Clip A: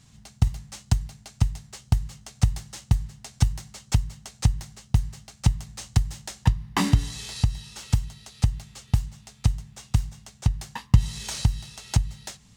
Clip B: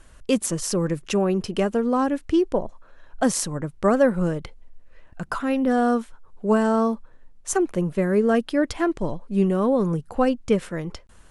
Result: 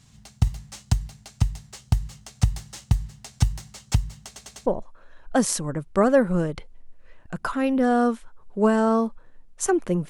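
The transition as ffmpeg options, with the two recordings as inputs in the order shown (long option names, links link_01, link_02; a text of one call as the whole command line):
ffmpeg -i cue0.wav -i cue1.wav -filter_complex "[0:a]apad=whole_dur=10.09,atrim=end=10.09,asplit=4[link_01][link_02][link_03][link_04];[link_01]atrim=end=4.362[link_05];[link_02]atrim=start=4.258:end=4.362[link_06];[link_03]atrim=start=4.258:end=4.362[link_07];[link_04]atrim=start=4.258:end=4.362[link_08];[1:a]atrim=start=2.528:end=7.96[link_09];[link_05][link_06]acrossfade=duration=0.004:curve1=hsin:curve2=hsin[link_10];[link_10][link_07]acrossfade=duration=0.004:curve1=hsin:curve2=hsin[link_11];[link_11][link_08]acrossfade=duration=0.004:curve1=hsin:curve2=hsin[link_12];[link_12][link_09]acrossfade=duration=0.004:curve1=hsin:curve2=hsin" out.wav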